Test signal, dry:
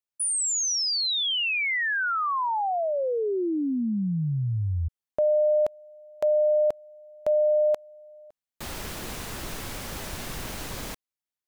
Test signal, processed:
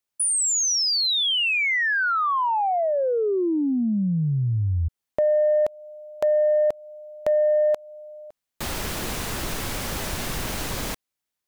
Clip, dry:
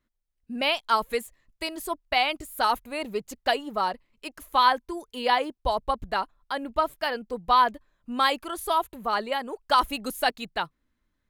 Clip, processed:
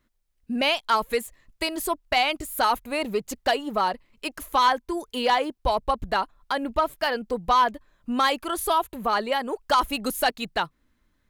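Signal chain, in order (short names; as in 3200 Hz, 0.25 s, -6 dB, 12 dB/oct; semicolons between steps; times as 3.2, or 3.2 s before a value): in parallel at +2.5 dB: compressor, threshold -32 dBFS; on the sum: soft clip -11.5 dBFS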